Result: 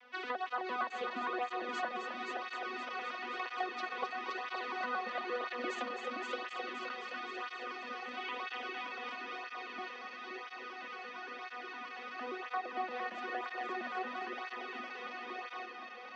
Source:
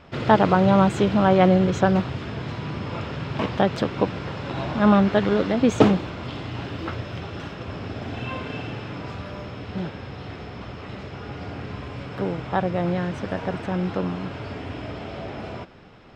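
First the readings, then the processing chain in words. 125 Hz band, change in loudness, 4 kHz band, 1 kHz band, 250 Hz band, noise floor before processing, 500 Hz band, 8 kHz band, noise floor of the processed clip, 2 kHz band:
below −40 dB, −16.5 dB, −9.5 dB, −11.0 dB, −26.5 dB, −38 dBFS, −19.0 dB, can't be measured, −48 dBFS, −6.0 dB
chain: vocoder with an arpeggio as carrier bare fifth, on B3, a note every 115 ms
Bessel high-pass filter 1,600 Hz, order 2
high-shelf EQ 5,800 Hz −4.5 dB
downward compressor 6 to 1, threshold −40 dBFS, peak gain reduction 14.5 dB
high-frequency loss of the air 83 metres
on a send: echo machine with several playback heads 261 ms, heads first and second, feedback 64%, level −7 dB
on the sum: through-zero flanger with one copy inverted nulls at 1 Hz, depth 3.4 ms
level +7.5 dB

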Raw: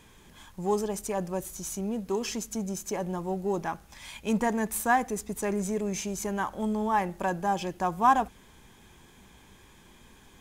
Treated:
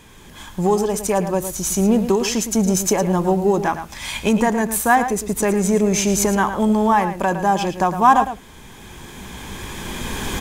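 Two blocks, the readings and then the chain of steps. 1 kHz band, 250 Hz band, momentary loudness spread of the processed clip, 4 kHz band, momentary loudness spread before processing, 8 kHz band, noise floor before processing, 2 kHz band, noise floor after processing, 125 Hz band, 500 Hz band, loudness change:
+10.0 dB, +12.5 dB, 14 LU, +13.5 dB, 9 LU, +13.5 dB, −56 dBFS, +10.0 dB, −42 dBFS, +13.0 dB, +11.5 dB, +11.0 dB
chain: camcorder AGC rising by 10 dB per second
slap from a distant wall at 19 metres, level −10 dB
level +8.5 dB

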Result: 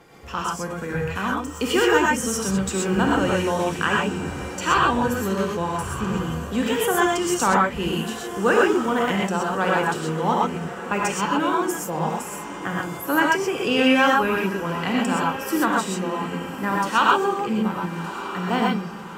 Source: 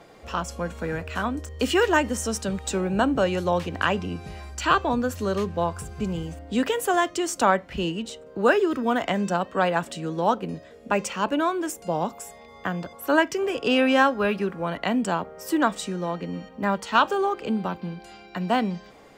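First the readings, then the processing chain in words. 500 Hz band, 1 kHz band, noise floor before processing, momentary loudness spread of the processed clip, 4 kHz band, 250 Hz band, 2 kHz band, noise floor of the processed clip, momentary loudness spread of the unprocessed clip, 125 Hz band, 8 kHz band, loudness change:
+1.5 dB, +3.5 dB, −47 dBFS, 10 LU, +3.5 dB, +3.0 dB, +4.0 dB, −34 dBFS, 11 LU, +3.5 dB, +5.0 dB, +2.5 dB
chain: thirty-one-band graphic EQ 630 Hz −11 dB, 4,000 Hz −5 dB, 12,500 Hz +5 dB
feedback delay with all-pass diffusion 1,246 ms, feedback 49%, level −12.5 dB
reverb whose tail is shaped and stops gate 150 ms rising, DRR −2 dB

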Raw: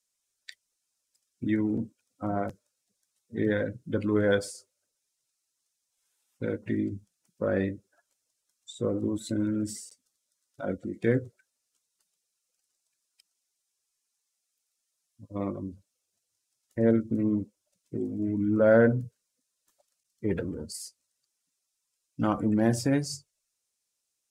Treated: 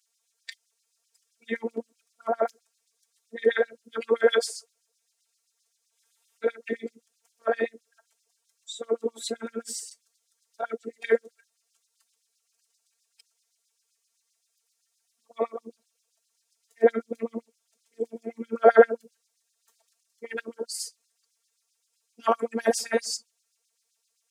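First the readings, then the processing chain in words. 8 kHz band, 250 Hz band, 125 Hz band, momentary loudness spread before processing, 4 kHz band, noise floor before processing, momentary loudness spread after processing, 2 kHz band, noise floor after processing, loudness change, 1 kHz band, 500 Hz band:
+5.5 dB, −9.5 dB, below −20 dB, 16 LU, +7.5 dB, −82 dBFS, 17 LU, +4.0 dB, −77 dBFS, +1.0 dB, +8.0 dB, +4.0 dB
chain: phases set to zero 229 Hz
auto-filter high-pass sine 7.7 Hz 410–4,900 Hz
level +6.5 dB

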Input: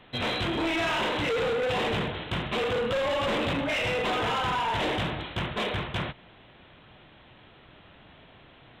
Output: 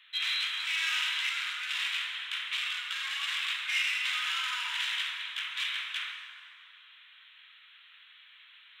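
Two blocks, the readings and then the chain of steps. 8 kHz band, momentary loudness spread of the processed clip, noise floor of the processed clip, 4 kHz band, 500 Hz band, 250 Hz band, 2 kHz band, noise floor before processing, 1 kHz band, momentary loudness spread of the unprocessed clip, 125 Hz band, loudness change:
+3.5 dB, 7 LU, −57 dBFS, +2.5 dB, below −40 dB, below −40 dB, 0.0 dB, −54 dBFS, −13.0 dB, 5 LU, below −40 dB, −2.5 dB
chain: reversed playback
upward compression, threshold −47 dBFS
reversed playback
Bessel high-pass filter 2,400 Hz, order 8
dense smooth reverb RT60 2.5 s, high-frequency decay 0.6×, DRR 2 dB
level +2.5 dB

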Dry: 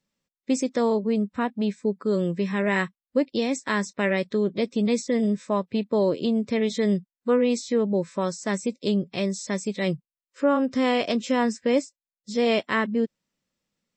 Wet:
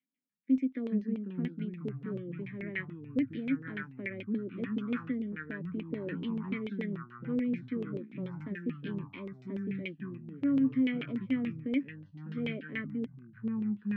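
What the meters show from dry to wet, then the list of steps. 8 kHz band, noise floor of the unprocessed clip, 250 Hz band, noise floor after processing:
below −40 dB, below −85 dBFS, −7.0 dB, −56 dBFS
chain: formant filter i
low-shelf EQ 200 Hz −5.5 dB
delay with pitch and tempo change per echo 294 ms, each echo −4 semitones, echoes 3, each echo −6 dB
auto-filter low-pass saw down 6.9 Hz 450–2,800 Hz

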